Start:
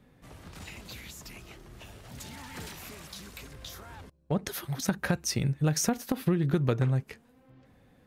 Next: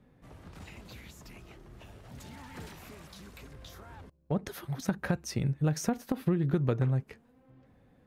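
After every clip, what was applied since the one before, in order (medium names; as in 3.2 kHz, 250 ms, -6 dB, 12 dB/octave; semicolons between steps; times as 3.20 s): treble shelf 2.2 kHz -8.5 dB; trim -1.5 dB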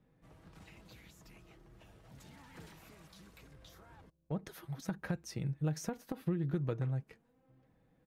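comb 6.2 ms, depth 35%; trim -8.5 dB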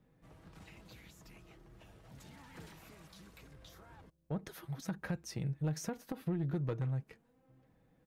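saturation -28.5 dBFS, distortion -18 dB; trim +1 dB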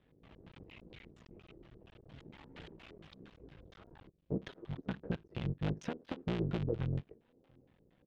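cycle switcher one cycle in 3, muted; LFO low-pass square 4.3 Hz 410–3200 Hz; trim +1 dB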